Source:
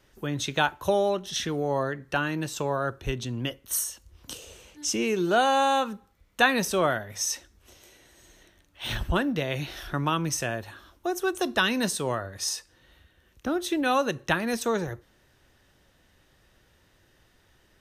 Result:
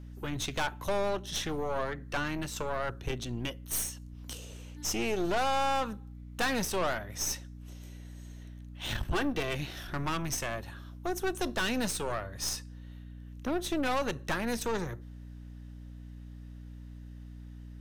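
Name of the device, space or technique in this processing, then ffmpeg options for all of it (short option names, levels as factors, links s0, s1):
valve amplifier with mains hum: -filter_complex "[0:a]asettb=1/sr,asplit=3[s0][s1][s2];[s0]atrim=end=9.134[s3];[s1]atrim=start=9.13:end=9.55,asetpts=PTS-STARTPTS,afade=t=in:d=0.004:c=qsin,afade=t=out:st=0.416:d=0.004:c=qsin,aecho=1:1:2.6:0.8,atrim=end_sample=18522[s4];[s2]atrim=start=9.546[s5];[s3][s4]acrossfade=d=0.004:c1=hsin:c2=qsin[s6];[s6][s5]acrossfade=d=0.004:c1=qsin:c2=hsin,aeval=exprs='(tanh(20*val(0)+0.7)-tanh(0.7))/20':c=same,aeval=exprs='val(0)+0.00631*(sin(2*PI*60*n/s)+sin(2*PI*2*60*n/s)/2+sin(2*PI*3*60*n/s)/3+sin(2*PI*4*60*n/s)/4+sin(2*PI*5*60*n/s)/5)':c=same"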